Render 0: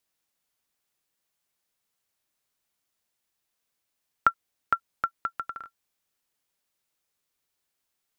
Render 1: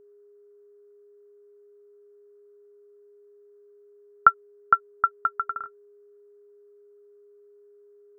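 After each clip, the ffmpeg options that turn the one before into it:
ffmpeg -i in.wav -af "highshelf=frequency=2000:width_type=q:width=3:gain=-13,aeval=exprs='val(0)+0.00282*sin(2*PI*410*n/s)':channel_layout=same,volume=-1dB" out.wav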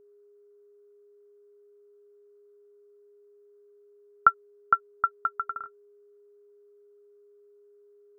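ffmpeg -i in.wav -af "bandreject=frequency=1700:width=15,volume=-3dB" out.wav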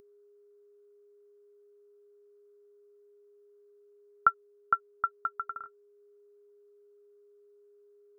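ffmpeg -i in.wav -af "acompressor=mode=upward:threshold=-53dB:ratio=2.5,volume=-4.5dB" out.wav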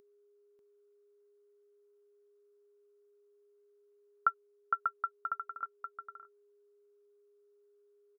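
ffmpeg -i in.wav -af "lowshelf=frequency=150:gain=-9,aecho=1:1:591:0.562,volume=-5.5dB" out.wav

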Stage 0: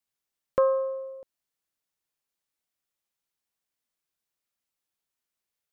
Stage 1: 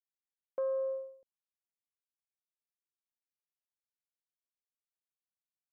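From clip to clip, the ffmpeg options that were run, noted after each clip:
ffmpeg -i in.wav -af "agate=range=-33dB:threshold=-32dB:ratio=3:detection=peak,equalizer=frequency=1200:width_type=o:width=0.61:gain=-12.5,areverse,acompressor=threshold=-30dB:ratio=6,areverse,volume=-1.5dB" out.wav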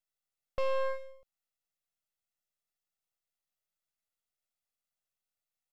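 ffmpeg -i in.wav -af "aeval=exprs='max(val(0),0)':channel_layout=same,aecho=1:1:1.5:0.51,aeval=exprs='0.0531*(cos(1*acos(clip(val(0)/0.0531,-1,1)))-cos(1*PI/2))+0.00531*(cos(8*acos(clip(val(0)/0.0531,-1,1)))-cos(8*PI/2))':channel_layout=same,volume=5.5dB" out.wav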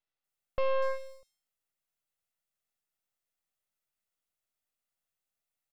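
ffmpeg -i in.wav -filter_complex "[0:a]acrossover=split=4900[link_01][link_02];[link_02]adelay=240[link_03];[link_01][link_03]amix=inputs=2:normalize=0,volume=2dB" out.wav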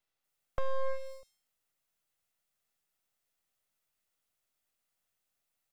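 ffmpeg -i in.wav -filter_complex "[0:a]acrossover=split=350[link_01][link_02];[link_02]acompressor=threshold=-42dB:ratio=4[link_03];[link_01][link_03]amix=inputs=2:normalize=0,volume=29.5dB,asoftclip=hard,volume=-29.5dB,volume=5dB" out.wav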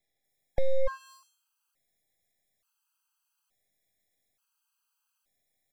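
ffmpeg -i in.wav -af "afftfilt=real='re*gt(sin(2*PI*0.57*pts/sr)*(1-2*mod(floor(b*sr/1024/820),2)),0)':imag='im*gt(sin(2*PI*0.57*pts/sr)*(1-2*mod(floor(b*sr/1024/820),2)),0)':win_size=1024:overlap=0.75,volume=7dB" out.wav

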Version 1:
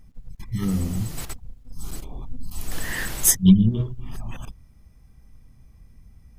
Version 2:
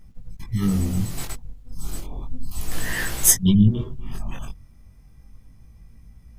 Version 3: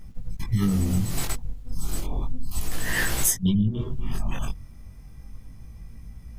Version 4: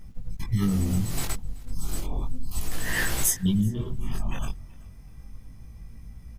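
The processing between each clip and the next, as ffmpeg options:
ffmpeg -i in.wav -af "flanger=delay=17.5:depth=4.8:speed=0.33,volume=5dB" out.wav
ffmpeg -i in.wav -af "acompressor=threshold=-24dB:ratio=10,volume=5.5dB" out.wav
ffmpeg -i in.wav -af "aecho=1:1:379|758:0.0631|0.0177,volume=-1.5dB" out.wav

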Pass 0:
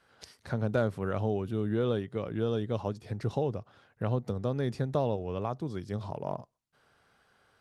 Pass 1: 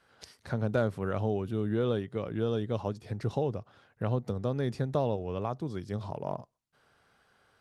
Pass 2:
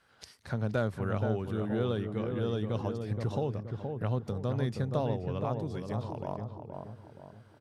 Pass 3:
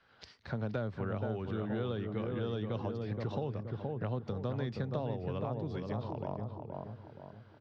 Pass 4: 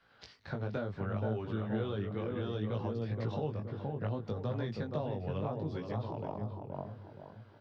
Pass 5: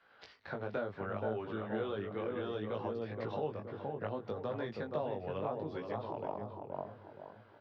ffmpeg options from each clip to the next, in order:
ffmpeg -i in.wav -af anull out.wav
ffmpeg -i in.wav -filter_complex "[0:a]equalizer=frequency=440:width=0.65:gain=-3.5,asplit=2[link_01][link_02];[link_02]adelay=473,lowpass=frequency=1200:poles=1,volume=-4.5dB,asplit=2[link_03][link_04];[link_04]adelay=473,lowpass=frequency=1200:poles=1,volume=0.45,asplit=2[link_05][link_06];[link_06]adelay=473,lowpass=frequency=1200:poles=1,volume=0.45,asplit=2[link_07][link_08];[link_08]adelay=473,lowpass=frequency=1200:poles=1,volume=0.45,asplit=2[link_09][link_10];[link_10]adelay=473,lowpass=frequency=1200:poles=1,volume=0.45,asplit=2[link_11][link_12];[link_12]adelay=473,lowpass=frequency=1200:poles=1,volume=0.45[link_13];[link_03][link_05][link_07][link_09][link_11][link_13]amix=inputs=6:normalize=0[link_14];[link_01][link_14]amix=inputs=2:normalize=0" out.wav
ffmpeg -i in.wav -filter_complex "[0:a]lowpass=frequency=4800:width=0.5412,lowpass=frequency=4800:width=1.3066,acrossover=split=170|730[link_01][link_02][link_03];[link_01]acompressor=threshold=-39dB:ratio=4[link_04];[link_02]acompressor=threshold=-36dB:ratio=4[link_05];[link_03]acompressor=threshold=-44dB:ratio=4[link_06];[link_04][link_05][link_06]amix=inputs=3:normalize=0" out.wav
ffmpeg -i in.wav -af "flanger=delay=17.5:depth=3.3:speed=0.66,volume=3dB" out.wav
ffmpeg -i in.wav -af "bass=frequency=250:gain=-12,treble=frequency=4000:gain=-11,bandreject=frequency=60:width_type=h:width=6,bandreject=frequency=120:width_type=h:width=6,volume=2dB" out.wav

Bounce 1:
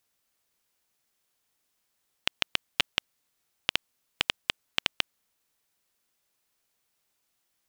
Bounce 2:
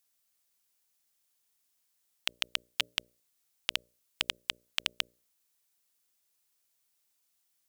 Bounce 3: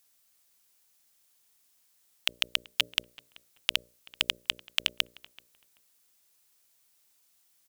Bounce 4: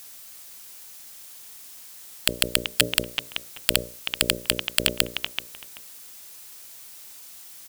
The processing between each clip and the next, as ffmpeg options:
ffmpeg -i in.wav -af "highshelf=frequency=3700:gain=10.5,bandreject=frequency=60:width_type=h:width=6,bandreject=frequency=120:width_type=h:width=6,bandreject=frequency=180:width_type=h:width=6,bandreject=frequency=240:width_type=h:width=6,bandreject=frequency=300:width_type=h:width=6,bandreject=frequency=360:width_type=h:width=6,bandreject=frequency=420:width_type=h:width=6,bandreject=frequency=480:width_type=h:width=6,bandreject=frequency=540:width_type=h:width=6,bandreject=frequency=600:width_type=h:width=6,volume=-8dB" out.wav
ffmpeg -i in.wav -filter_complex "[0:a]asoftclip=type=tanh:threshold=-13.5dB,asplit=2[link_01][link_02];[link_02]adelay=383,lowpass=frequency=1900:poles=1,volume=-20dB,asplit=2[link_03][link_04];[link_04]adelay=383,lowpass=frequency=1900:poles=1,volume=0.24[link_05];[link_01][link_03][link_05]amix=inputs=3:normalize=0,volume=8dB" out.wav
ffmpeg -i in.wav -af "aeval=exprs='0.531*sin(PI/2*7.94*val(0)/0.531)':channel_layout=same,volume=1.5dB" out.wav

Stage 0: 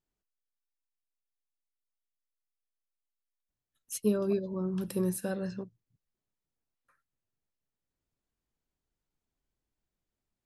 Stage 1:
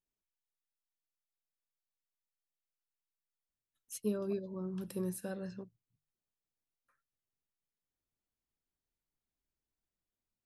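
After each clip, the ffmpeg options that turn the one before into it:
ffmpeg -i in.wav -af "bandreject=frequency=50:width_type=h:width=6,bandreject=frequency=100:width_type=h:width=6,bandreject=frequency=150:width_type=h:width=6,volume=-7dB" out.wav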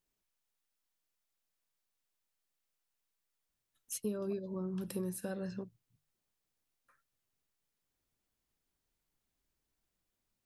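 ffmpeg -i in.wav -af "acompressor=threshold=-45dB:ratio=2.5,volume=7dB" out.wav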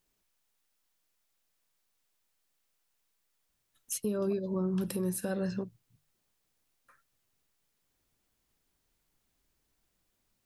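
ffmpeg -i in.wav -af "alimiter=level_in=6.5dB:limit=-24dB:level=0:latency=1:release=117,volume=-6.5dB,volume=7.5dB" out.wav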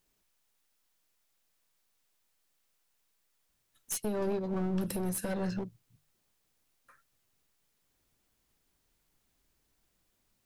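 ffmpeg -i in.wav -af "aeval=exprs='clip(val(0),-1,0.0178)':channel_layout=same,volume=2dB" out.wav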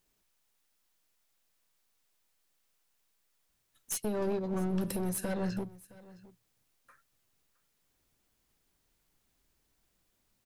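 ffmpeg -i in.wav -af "aecho=1:1:665:0.0944" out.wav

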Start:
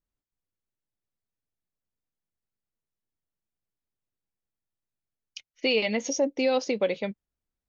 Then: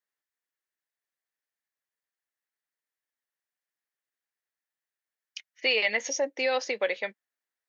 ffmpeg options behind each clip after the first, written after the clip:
ffmpeg -i in.wav -af "highpass=550,equalizer=frequency=1800:width=2.9:gain=11.5" out.wav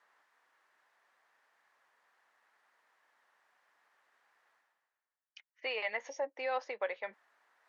ffmpeg -i in.wav -af "areverse,acompressor=mode=upward:threshold=-36dB:ratio=2.5,areverse,bandpass=frequency=990:width_type=q:width=1.6:csg=0,volume=-1.5dB" out.wav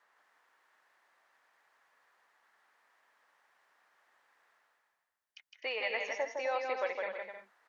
ffmpeg -i in.wav -af "aecho=1:1:160|256|313.6|348.2|368.9:0.631|0.398|0.251|0.158|0.1" out.wav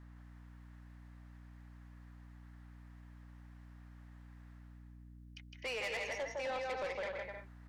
ffmpeg -i in.wav -af "aeval=exprs='val(0)+0.002*(sin(2*PI*60*n/s)+sin(2*PI*2*60*n/s)/2+sin(2*PI*3*60*n/s)/3+sin(2*PI*4*60*n/s)/4+sin(2*PI*5*60*n/s)/5)':channel_layout=same,asoftclip=type=tanh:threshold=-36dB,volume=1dB" out.wav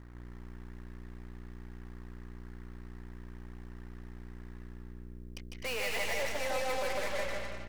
ffmpeg -i in.wav -filter_complex "[0:a]aeval=exprs='0.0188*(cos(1*acos(clip(val(0)/0.0188,-1,1)))-cos(1*PI/2))+0.00531*(cos(6*acos(clip(val(0)/0.0188,-1,1)))-cos(6*PI/2))':channel_layout=same,asplit=2[link_01][link_02];[link_02]aecho=0:1:150|255|328.5|380|416:0.631|0.398|0.251|0.158|0.1[link_03];[link_01][link_03]amix=inputs=2:normalize=0,volume=2.5dB" out.wav

